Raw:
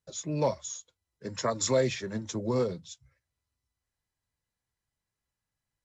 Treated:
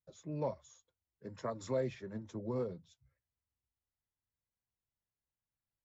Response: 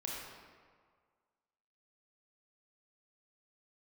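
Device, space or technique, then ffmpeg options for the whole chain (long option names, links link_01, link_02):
through cloth: -af "highshelf=frequency=2800:gain=-17,volume=-8.5dB"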